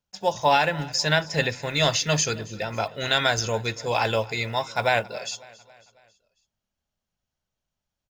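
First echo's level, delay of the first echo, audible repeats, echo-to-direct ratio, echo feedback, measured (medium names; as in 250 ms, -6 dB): -21.0 dB, 274 ms, 3, -19.5 dB, 52%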